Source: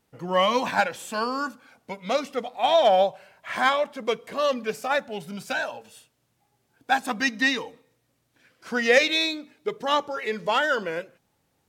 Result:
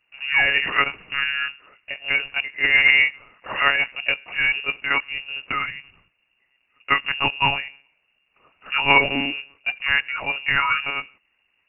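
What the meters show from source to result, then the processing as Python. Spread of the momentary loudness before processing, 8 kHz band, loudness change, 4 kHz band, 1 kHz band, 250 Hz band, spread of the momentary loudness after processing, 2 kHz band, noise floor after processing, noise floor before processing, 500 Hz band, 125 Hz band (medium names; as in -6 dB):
14 LU, under -40 dB, +4.5 dB, +4.0 dB, -1.5 dB, -4.0 dB, 13 LU, +8.5 dB, -70 dBFS, -72 dBFS, -10.5 dB, +5.0 dB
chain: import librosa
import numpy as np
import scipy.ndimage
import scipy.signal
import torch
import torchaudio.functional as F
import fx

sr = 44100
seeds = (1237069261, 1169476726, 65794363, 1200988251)

y = fx.lpc_monotone(x, sr, seeds[0], pitch_hz=140.0, order=10)
y = fx.mod_noise(y, sr, seeds[1], snr_db=18)
y = fx.freq_invert(y, sr, carrier_hz=2800)
y = y * librosa.db_to_amplitude(2.5)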